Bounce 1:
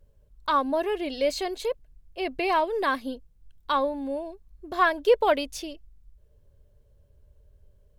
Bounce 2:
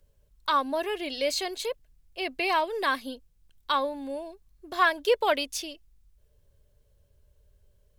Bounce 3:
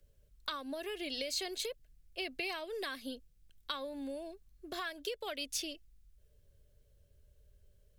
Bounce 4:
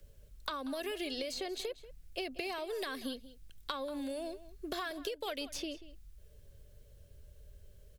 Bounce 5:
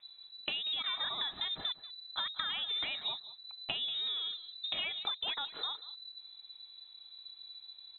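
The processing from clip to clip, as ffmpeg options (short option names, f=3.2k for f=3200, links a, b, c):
-filter_complex "[0:a]tiltshelf=f=1.4k:g=-5,acrossover=split=120|1100|2700[a][b][c][d];[a]alimiter=level_in=30dB:limit=-24dB:level=0:latency=1:release=67,volume=-30dB[e];[e][b][c][d]amix=inputs=4:normalize=0"
-filter_complex "[0:a]acompressor=threshold=-30dB:ratio=2.5,equalizer=f=940:t=o:w=0.48:g=-10.5,acrossover=split=160|3000[a][b][c];[b]acompressor=threshold=-37dB:ratio=4[d];[a][d][c]amix=inputs=3:normalize=0,volume=-2dB"
-filter_complex "[0:a]aeval=exprs='0.0841*(cos(1*acos(clip(val(0)/0.0841,-1,1)))-cos(1*PI/2))+0.00237*(cos(4*acos(clip(val(0)/0.0841,-1,1)))-cos(4*PI/2))':c=same,acrossover=split=1200|4600[a][b][c];[a]acompressor=threshold=-47dB:ratio=4[d];[b]acompressor=threshold=-55dB:ratio=4[e];[c]acompressor=threshold=-60dB:ratio=4[f];[d][e][f]amix=inputs=3:normalize=0,asplit=2[g][h];[h]adelay=186.6,volume=-16dB,highshelf=f=4k:g=-4.2[i];[g][i]amix=inputs=2:normalize=0,volume=9dB"
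-af "lowpass=f=3.4k:t=q:w=0.5098,lowpass=f=3.4k:t=q:w=0.6013,lowpass=f=3.4k:t=q:w=0.9,lowpass=f=3.4k:t=q:w=2.563,afreqshift=-4000,volume=2.5dB"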